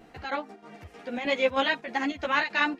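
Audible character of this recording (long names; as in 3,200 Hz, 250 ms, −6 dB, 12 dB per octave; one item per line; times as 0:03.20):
chopped level 3.2 Hz, depth 60%, duty 75%
a shimmering, thickened sound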